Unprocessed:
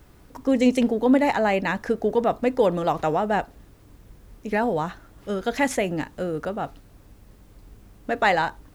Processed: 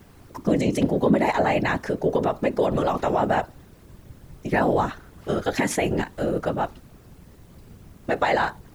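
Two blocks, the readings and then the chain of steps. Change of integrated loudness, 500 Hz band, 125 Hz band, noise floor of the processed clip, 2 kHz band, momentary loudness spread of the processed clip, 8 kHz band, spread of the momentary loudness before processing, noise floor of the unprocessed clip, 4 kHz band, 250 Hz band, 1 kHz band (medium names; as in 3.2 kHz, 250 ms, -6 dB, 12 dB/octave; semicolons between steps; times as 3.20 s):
0.0 dB, 0.0 dB, +5.5 dB, -50 dBFS, -0.5 dB, 9 LU, +2.5 dB, 12 LU, -52 dBFS, -0.5 dB, -1.0 dB, 0.0 dB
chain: peak limiter -16 dBFS, peak gain reduction 8.5 dB; whisper effect; trim +3 dB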